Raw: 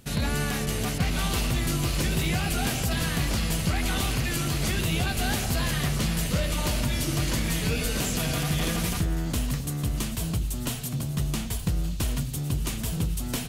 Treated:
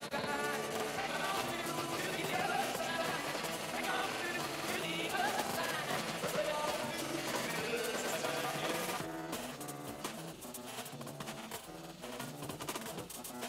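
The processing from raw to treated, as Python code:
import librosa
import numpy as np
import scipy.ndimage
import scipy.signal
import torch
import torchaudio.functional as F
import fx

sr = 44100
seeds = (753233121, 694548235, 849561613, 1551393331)

y = scipy.signal.sosfilt(scipy.signal.butter(2, 690.0, 'highpass', fs=sr, output='sos'), x)
y = fx.tilt_shelf(y, sr, db=8.5, hz=1300.0)
y = fx.cheby_harmonics(y, sr, harmonics=(8,), levels_db=(-34,), full_scale_db=-19.5)
y = fx.granulator(y, sr, seeds[0], grain_ms=100.0, per_s=20.0, spray_ms=100.0, spread_st=0)
y = y * librosa.db_to_amplitude(-1.5)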